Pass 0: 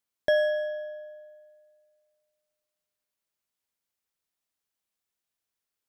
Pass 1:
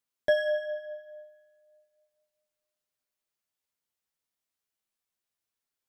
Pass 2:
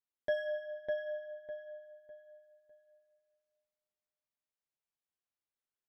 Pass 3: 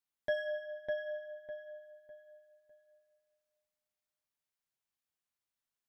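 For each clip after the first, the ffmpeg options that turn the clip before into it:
ffmpeg -i in.wav -af "flanger=delay=7.6:depth=8:regen=20:speed=0.34:shape=sinusoidal,volume=1.5dB" out.wav
ffmpeg -i in.wav -filter_complex "[0:a]highshelf=frequency=4800:gain=-11,asplit=2[link_01][link_02];[link_02]adelay=603,lowpass=frequency=2700:poles=1,volume=-3.5dB,asplit=2[link_03][link_04];[link_04]adelay=603,lowpass=frequency=2700:poles=1,volume=0.32,asplit=2[link_05][link_06];[link_06]adelay=603,lowpass=frequency=2700:poles=1,volume=0.32,asplit=2[link_07][link_08];[link_08]adelay=603,lowpass=frequency=2700:poles=1,volume=0.32[link_09];[link_03][link_05][link_07][link_09]amix=inputs=4:normalize=0[link_10];[link_01][link_10]amix=inputs=2:normalize=0,volume=-8.5dB" out.wav
ffmpeg -i in.wav -af "equalizer=frequency=430:width=1.2:gain=-5,volume=2dB" out.wav

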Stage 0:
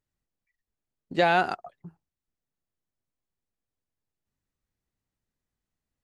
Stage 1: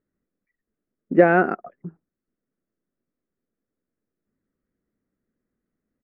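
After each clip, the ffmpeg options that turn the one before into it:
ffmpeg -i in.wav -af "firequalizer=gain_entry='entry(110,0);entry(210,14);entry(350,13);entry(530,10);entry(850,-3);entry(1300,6);entry(2000,2);entry(3800,-29);entry(5400,-19)':delay=0.05:min_phase=1" out.wav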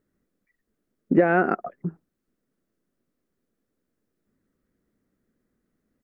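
ffmpeg -i in.wav -af "acompressor=threshold=-21dB:ratio=6,volume=6dB" out.wav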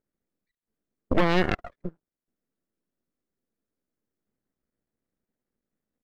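ffmpeg -i in.wav -af "aeval=exprs='0.501*(cos(1*acos(clip(val(0)/0.501,-1,1)))-cos(1*PI/2))+0.224*(cos(6*acos(clip(val(0)/0.501,-1,1)))-cos(6*PI/2))':channel_layout=same,aeval=exprs='max(val(0),0)':channel_layout=same,volume=-7.5dB" out.wav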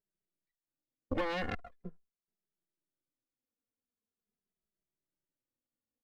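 ffmpeg -i in.wav -filter_complex "[0:a]asplit=2[link_01][link_02];[link_02]adelay=2.6,afreqshift=-0.43[link_03];[link_01][link_03]amix=inputs=2:normalize=1,volume=-8dB" out.wav

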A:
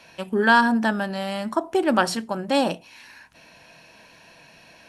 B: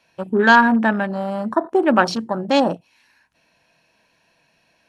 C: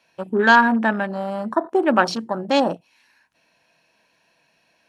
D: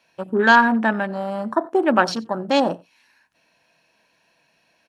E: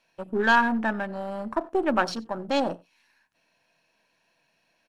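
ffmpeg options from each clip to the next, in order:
ffmpeg -i in.wav -af "afwtdn=0.0251,volume=4.5dB" out.wav
ffmpeg -i in.wav -af "lowshelf=frequency=110:gain=-10.5,volume=-1dB" out.wav
ffmpeg -i in.wav -af "aecho=1:1:91:0.0631" out.wav
ffmpeg -i in.wav -af "aeval=exprs='if(lt(val(0),0),0.708*val(0),val(0))':channel_layout=same,volume=-5dB" out.wav

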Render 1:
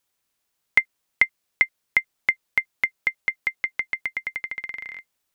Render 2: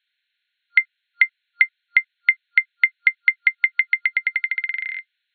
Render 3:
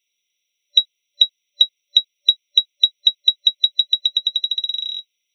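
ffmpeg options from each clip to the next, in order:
ffmpeg -i in.wav -af "afftfilt=real='re*between(b*sr/4096,1400,4300)':imag='im*between(b*sr/4096,1400,4300)':win_size=4096:overlap=0.75,alimiter=level_in=9.5dB:limit=-1dB:release=50:level=0:latency=1,volume=-1dB" out.wav
ffmpeg -i in.wav -af "afftfilt=real='real(if(between(b,1,1012),(2*floor((b-1)/92)+1)*92-b,b),0)':imag='imag(if(between(b,1,1012),(2*floor((b-1)/92)+1)*92-b,b),0)*if(between(b,1,1012),-1,1)':win_size=2048:overlap=0.75,aderivative,volume=7.5dB" out.wav

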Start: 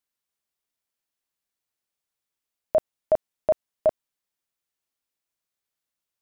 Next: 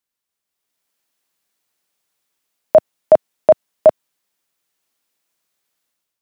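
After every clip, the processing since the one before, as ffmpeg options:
ffmpeg -i in.wav -filter_complex "[0:a]acrossover=split=130[link_01][link_02];[link_01]acrusher=bits=3:mode=log:mix=0:aa=0.000001[link_03];[link_02]dynaudnorm=framelen=450:gausssize=3:maxgain=10dB[link_04];[link_03][link_04]amix=inputs=2:normalize=0,volume=2.5dB" out.wav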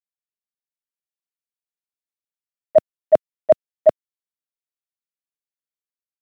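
ffmpeg -i in.wav -af "agate=range=-26dB:threshold=-8dB:ratio=16:detection=peak,equalizer=frequency=900:width=2.1:gain=-7" out.wav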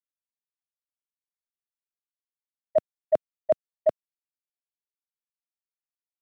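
ffmpeg -i in.wav -af "agate=range=-33dB:threshold=-38dB:ratio=3:detection=peak,volume=-9dB" out.wav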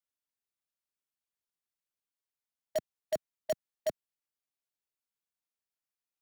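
ffmpeg -i in.wav -filter_complex "[0:a]acrossover=split=190|420|620[link_01][link_02][link_03][link_04];[link_03]aeval=exprs='(mod(39.8*val(0)+1,2)-1)/39.8':channel_layout=same[link_05];[link_01][link_02][link_05][link_04]amix=inputs=4:normalize=0,alimiter=limit=-23dB:level=0:latency=1" out.wav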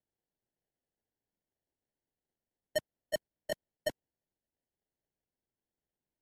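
ffmpeg -i in.wav -af "acrusher=samples=36:mix=1:aa=0.000001,volume=-1.5dB" -ar 32000 -c:a libmp3lame -b:a 96k out.mp3

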